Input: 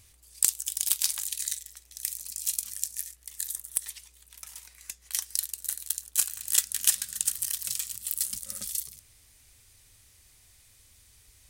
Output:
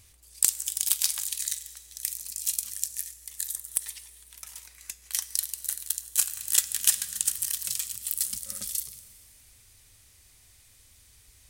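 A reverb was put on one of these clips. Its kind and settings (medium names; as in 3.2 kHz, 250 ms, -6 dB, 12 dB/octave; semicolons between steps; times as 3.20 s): Schroeder reverb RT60 2.4 s, combs from 31 ms, DRR 15 dB; trim +1 dB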